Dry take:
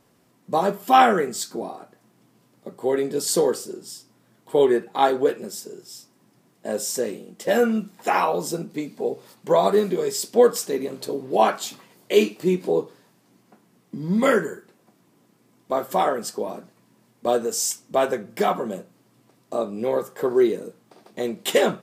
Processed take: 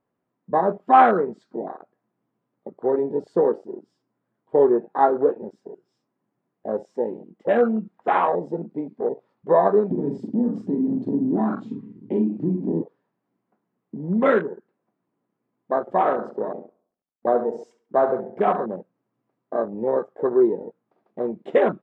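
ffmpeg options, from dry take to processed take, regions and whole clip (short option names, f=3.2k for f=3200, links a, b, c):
-filter_complex "[0:a]asettb=1/sr,asplit=3[a][b][c];[a]atrim=end=9.914[d];[b]atrim=start=9.91:end=12.82,asetpts=PTS-STARTPTS,afade=t=in:d=0.004:c=qsin,afade=t=out:st=2.906:d=0.004:c=qsin,lowshelf=f=360:t=q:w=3:g=12,acompressor=threshold=-20dB:ratio=6:attack=3.2:release=140:knee=1:detection=peak,asplit=2[e][f];[f]adelay=42,volume=-4.5dB[g];[e][g]amix=inputs=2:normalize=0,atrim=end_sample=128331[h];[c]atrim=start=12.816[i];[d][h]acrossfade=d=0.004:c1=hsin:c2=qsin[j];[j][i]acrossfade=d=0.004:c1=qsin:c2=hsin,asettb=1/sr,asplit=3[k][l][m];[k]atrim=end=15.804[n];[l]atrim=start=15.8:end=18.66,asetpts=PTS-STARTPTS,afade=t=in:d=0.004:c=qsin,afade=t=out:st=2.856:d=0.004:c=qsin,aeval=exprs='sgn(val(0))*max(abs(val(0))-0.002,0)':c=same,asplit=2[o][p];[p]adelay=69,lowpass=f=2.8k:p=1,volume=-9dB,asplit=2[q][r];[r]adelay=69,lowpass=f=2.8k:p=1,volume=0.51,asplit=2[s][t];[t]adelay=69,lowpass=f=2.8k:p=1,volume=0.51,asplit=2[u][v];[v]adelay=69,lowpass=f=2.8k:p=1,volume=0.51,asplit=2[w][x];[x]adelay=69,lowpass=f=2.8k:p=1,volume=0.51,asplit=2[y][z];[z]adelay=69,lowpass=f=2.8k:p=1,volume=0.51[aa];[o][q][s][u][w][y][aa]amix=inputs=7:normalize=0,atrim=end_sample=126126[ab];[m]atrim=start=18.656[ac];[n][ab]acrossfade=d=0.004:c1=hsin:c2=qsin[ad];[ad][ac]acrossfade=d=0.004:c1=qsin:c2=hsin,lowpass=1.6k,afwtdn=0.0316,lowshelf=f=200:g=-6,volume=2dB"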